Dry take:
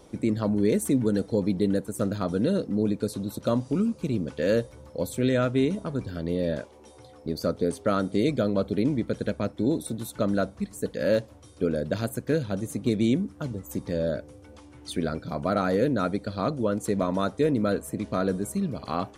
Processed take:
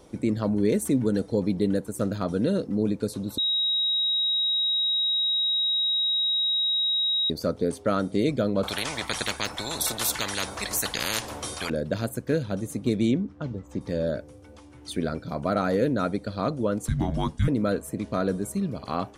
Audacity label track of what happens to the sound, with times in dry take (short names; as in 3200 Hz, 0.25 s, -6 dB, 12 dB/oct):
3.380000	7.300000	bleep 3810 Hz -21.5 dBFS
8.630000	11.700000	spectral compressor 10:1
13.110000	13.810000	air absorption 140 m
16.880000	17.480000	frequency shift -340 Hz